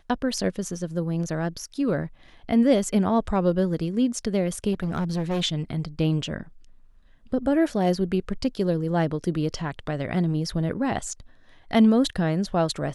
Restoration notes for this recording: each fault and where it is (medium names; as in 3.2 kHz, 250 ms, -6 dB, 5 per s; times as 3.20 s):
4.72–5.42 s: clipped -22 dBFS